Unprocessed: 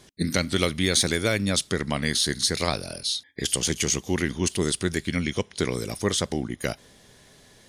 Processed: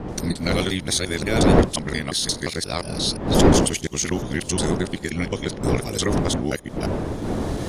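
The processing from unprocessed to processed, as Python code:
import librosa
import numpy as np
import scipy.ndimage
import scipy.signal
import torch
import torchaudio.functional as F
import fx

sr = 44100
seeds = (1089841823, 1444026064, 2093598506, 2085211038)

y = fx.local_reverse(x, sr, ms=176.0)
y = fx.recorder_agc(y, sr, target_db=-10.5, rise_db_per_s=16.0, max_gain_db=30)
y = fx.dmg_wind(y, sr, seeds[0], corner_hz=380.0, level_db=-22.0)
y = F.gain(torch.from_numpy(y), -1.5).numpy()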